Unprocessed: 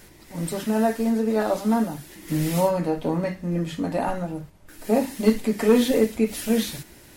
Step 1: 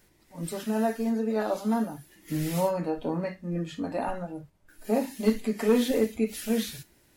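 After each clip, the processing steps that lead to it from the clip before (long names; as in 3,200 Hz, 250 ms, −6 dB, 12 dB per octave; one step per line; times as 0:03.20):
noise reduction from a noise print of the clip's start 9 dB
level −5 dB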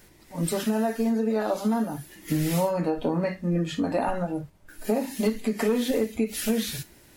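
downward compressor 6 to 1, threshold −30 dBFS, peak gain reduction 12.5 dB
level +8.5 dB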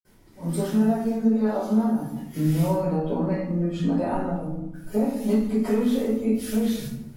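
convolution reverb RT60 0.95 s, pre-delay 48 ms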